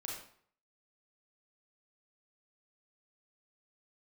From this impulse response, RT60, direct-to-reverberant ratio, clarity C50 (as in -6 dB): 0.55 s, -2.5 dB, 1.5 dB